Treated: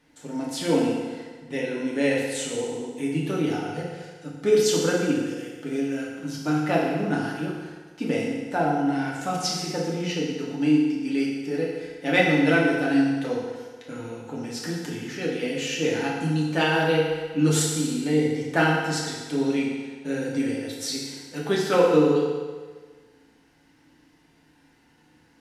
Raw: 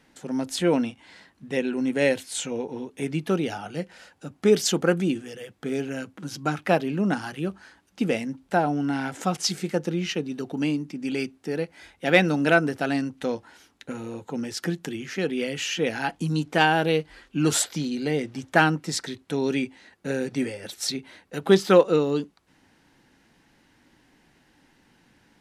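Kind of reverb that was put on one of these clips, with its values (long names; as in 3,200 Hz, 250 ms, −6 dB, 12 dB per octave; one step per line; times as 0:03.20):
feedback delay network reverb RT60 1.5 s, low-frequency decay 0.85×, high-frequency decay 0.9×, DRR −4.5 dB
level −6 dB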